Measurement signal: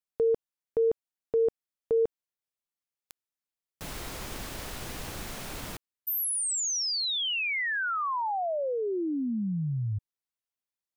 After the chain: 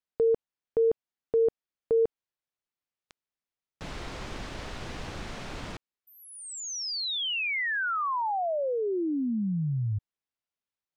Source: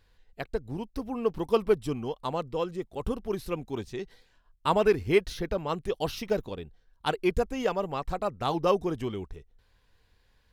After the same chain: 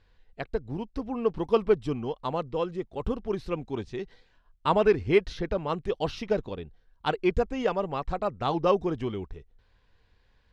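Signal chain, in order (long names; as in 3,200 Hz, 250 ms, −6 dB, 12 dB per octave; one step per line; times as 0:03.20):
high-frequency loss of the air 110 metres
level +1.5 dB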